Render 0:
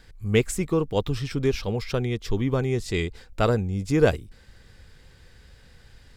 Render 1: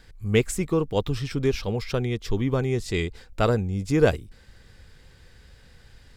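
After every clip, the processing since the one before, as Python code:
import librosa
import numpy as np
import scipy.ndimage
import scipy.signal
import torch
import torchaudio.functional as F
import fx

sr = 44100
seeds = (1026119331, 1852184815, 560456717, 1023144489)

y = x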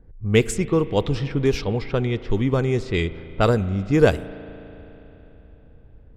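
y = fx.env_lowpass(x, sr, base_hz=460.0, full_db=-18.5)
y = fx.rev_spring(y, sr, rt60_s=3.6, pass_ms=(36,), chirp_ms=30, drr_db=15.0)
y = F.gain(torch.from_numpy(y), 3.5).numpy()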